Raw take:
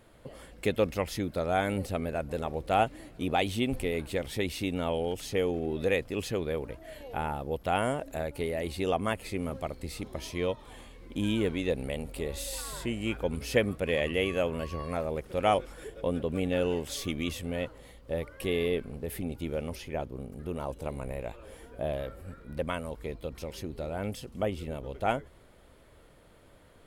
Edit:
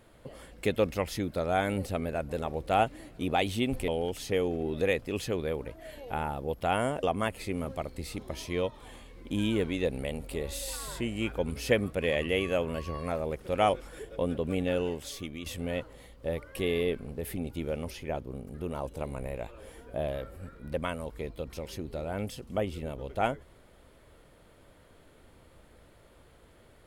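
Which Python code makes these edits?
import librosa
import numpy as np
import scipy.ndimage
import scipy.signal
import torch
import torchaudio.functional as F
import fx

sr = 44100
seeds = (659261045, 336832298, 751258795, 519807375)

y = fx.edit(x, sr, fx.cut(start_s=3.88, length_s=1.03),
    fx.cut(start_s=8.06, length_s=0.82),
    fx.fade_out_to(start_s=16.45, length_s=0.86, floor_db=-9.5), tone=tone)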